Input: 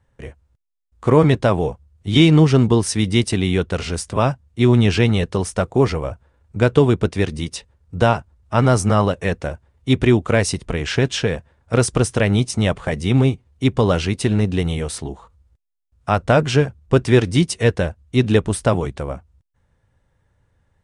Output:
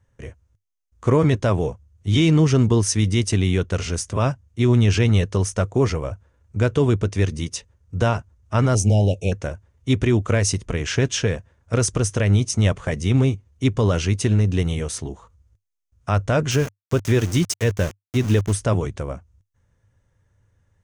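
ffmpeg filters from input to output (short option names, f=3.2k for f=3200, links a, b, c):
-filter_complex "[0:a]asettb=1/sr,asplit=3[a][b][c];[a]atrim=end=8.754[d];[b]atrim=start=8.75:end=9.32,asetpts=PTS-STARTPTS,afade=t=in:d=0.004:c=qsin,afade=t=out:st=0.566:d=0.004:c=qsin,asuperstop=centerf=1400:order=20:qfactor=0.95[e];[c]atrim=start=9.316[f];[d][e]acrossfade=d=0.004:c1=hsin:c2=qsin[g];[g][f]acrossfade=d=0.004:c1=qsin:c2=hsin,asettb=1/sr,asplit=3[h][i][j];[h]atrim=end=16.514[k];[i]atrim=start=16.51:end=18.53,asetpts=PTS-STARTPTS,afade=t=in:d=0.004:c=qsin,afade=t=out:st=2.016:d=0.004:c=qsin,aeval=exprs='val(0)*gte(abs(val(0)),0.0501)':c=same[l];[j]atrim=start=18.526[m];[k][l]acrossfade=d=0.004:c1=hsin:c2=qsin[n];[n][m]acrossfade=d=0.004:c1=qsin:c2=hsin,equalizer=f=100:t=o:w=0.33:g=8,equalizer=f=800:t=o:w=0.33:g=-5,equalizer=f=4k:t=o:w=0.33:g=-3,equalizer=f=6.3k:t=o:w=0.33:g=9,alimiter=level_in=5.5dB:limit=-1dB:release=50:level=0:latency=1,volume=-8dB"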